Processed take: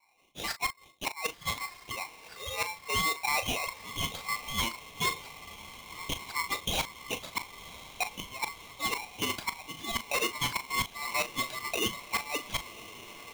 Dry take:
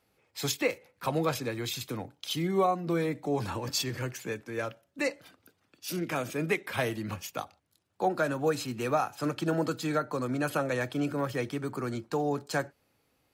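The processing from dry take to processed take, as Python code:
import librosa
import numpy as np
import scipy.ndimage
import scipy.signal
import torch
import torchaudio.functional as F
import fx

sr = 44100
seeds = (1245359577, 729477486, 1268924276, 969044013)

p1 = fx.octave_divider(x, sr, octaves=1, level_db=-1.0)
p2 = fx.spec_gate(p1, sr, threshold_db=-25, keep='strong')
p3 = scipy.signal.sosfilt(scipy.signal.butter(16, 440.0, 'highpass', fs=sr, output='sos'), p2)
p4 = fx.high_shelf(p3, sr, hz=2800.0, db=-6.5)
p5 = fx.notch(p4, sr, hz=2600.0, q=5.8)
p6 = fx.quant_companded(p5, sr, bits=4)
p7 = p5 + (p6 * librosa.db_to_amplitude(-11.5))
p8 = fx.filter_lfo_lowpass(p7, sr, shape='saw_up', hz=1.9, low_hz=620.0, high_hz=2900.0, q=4.1)
p9 = fx.gate_flip(p8, sr, shuts_db=-15.0, range_db=-26)
p10 = fx.cheby_harmonics(p9, sr, harmonics=(5,), levels_db=(-8,), full_scale_db=-13.5)
p11 = fx.doubler(p10, sr, ms=38.0, db=-10.5)
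p12 = fx.echo_diffused(p11, sr, ms=1091, feedback_pct=68, wet_db=-15.5)
p13 = p12 * np.sign(np.sin(2.0 * np.pi * 1600.0 * np.arange(len(p12)) / sr))
y = p13 * librosa.db_to_amplitude(-8.0)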